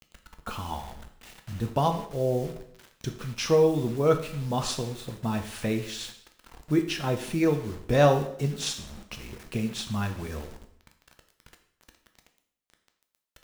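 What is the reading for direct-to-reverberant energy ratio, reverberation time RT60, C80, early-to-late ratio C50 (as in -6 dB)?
5.5 dB, 0.70 s, 12.5 dB, 10.0 dB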